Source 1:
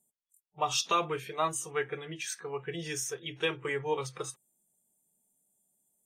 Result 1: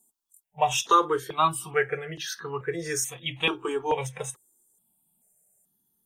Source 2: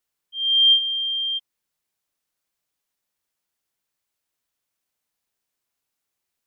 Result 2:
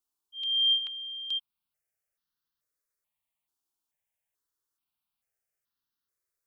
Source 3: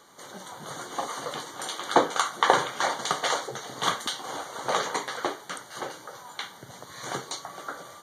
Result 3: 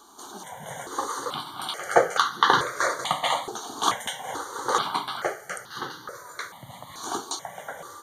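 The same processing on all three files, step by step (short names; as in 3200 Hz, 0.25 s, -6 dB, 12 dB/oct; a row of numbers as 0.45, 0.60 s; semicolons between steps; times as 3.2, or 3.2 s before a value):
step phaser 2.3 Hz 540–2300 Hz; match loudness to -27 LUFS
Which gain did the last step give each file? +9.5, -4.5, +5.0 dB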